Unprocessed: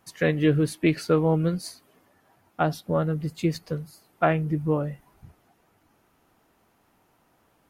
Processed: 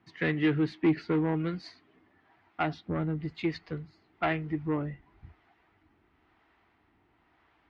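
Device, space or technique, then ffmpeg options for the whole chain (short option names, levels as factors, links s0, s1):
guitar amplifier with harmonic tremolo: -filter_complex "[0:a]acrossover=split=500[s0][s1];[s0]aeval=exprs='val(0)*(1-0.5/2+0.5/2*cos(2*PI*1*n/s))':c=same[s2];[s1]aeval=exprs='val(0)*(1-0.5/2-0.5/2*cos(2*PI*1*n/s))':c=same[s3];[s2][s3]amix=inputs=2:normalize=0,asoftclip=type=tanh:threshold=0.1,highpass=76,equalizer=f=320:t=q:w=4:g=5,equalizer=f=540:t=q:w=4:g=-10,equalizer=f=2000:t=q:w=4:g=7,lowpass=f=3900:w=0.5412,lowpass=f=3900:w=1.3066,asubboost=boost=8:cutoff=54"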